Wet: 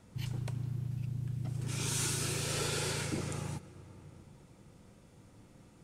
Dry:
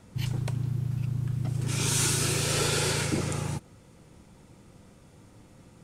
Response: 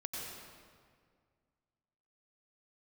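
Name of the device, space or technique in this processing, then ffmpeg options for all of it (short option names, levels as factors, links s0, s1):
ducked reverb: -filter_complex "[0:a]asplit=3[s0][s1][s2];[1:a]atrim=start_sample=2205[s3];[s1][s3]afir=irnorm=-1:irlink=0[s4];[s2]apad=whole_len=257289[s5];[s4][s5]sidechaincompress=threshold=0.0126:ratio=8:attack=16:release=652,volume=0.596[s6];[s0][s6]amix=inputs=2:normalize=0,asettb=1/sr,asplit=3[s7][s8][s9];[s7]atrim=end=0.874[s10];[s8]atrim=start=0.87:end=1.46,asetpts=PTS-STARTPTS,afade=t=in:d=0.004:c=qsin,afade=t=out:st=0.586:d=0.004:c=qsin,equalizer=f=1200:t=o:w=0.77:g=-5.5[s11];[s9]atrim=start=1.456[s12];[s10][s11]acrossfade=d=0.004:c1=hsin:c2=qsin[s13];[s13][s12]acrossfade=d=0.004:c1=qsin:c2=hsin,volume=0.376"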